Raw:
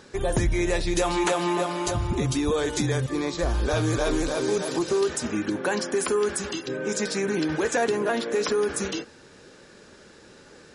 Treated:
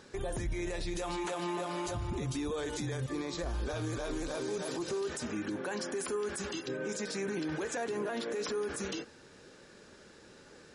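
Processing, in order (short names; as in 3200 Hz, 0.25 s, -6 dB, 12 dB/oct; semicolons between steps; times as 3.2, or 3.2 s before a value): limiter -22.5 dBFS, peak gain reduction 10 dB; gain -5.5 dB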